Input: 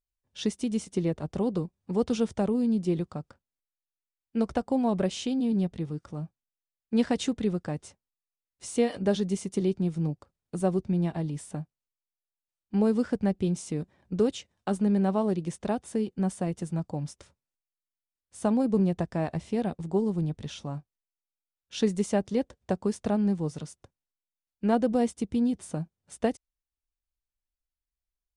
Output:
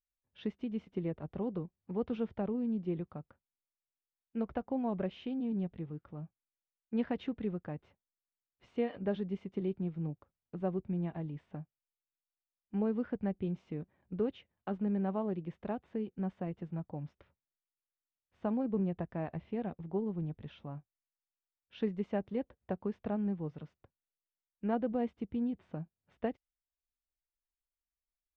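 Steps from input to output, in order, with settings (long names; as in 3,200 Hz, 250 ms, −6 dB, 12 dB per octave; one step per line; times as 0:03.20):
low-pass filter 2,800 Hz 24 dB per octave
level −8.5 dB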